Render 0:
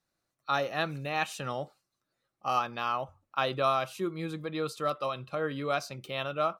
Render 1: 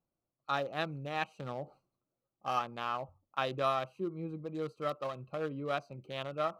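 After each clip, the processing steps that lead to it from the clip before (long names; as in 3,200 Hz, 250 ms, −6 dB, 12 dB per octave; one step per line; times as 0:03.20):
adaptive Wiener filter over 25 samples
reversed playback
upward compression, threshold −49 dBFS
reversed playback
level −3.5 dB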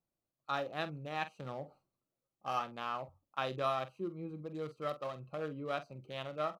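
double-tracking delay 46 ms −12.5 dB
level −3 dB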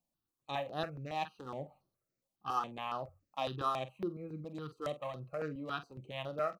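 step-sequenced phaser 7.2 Hz 400–7,600 Hz
level +3 dB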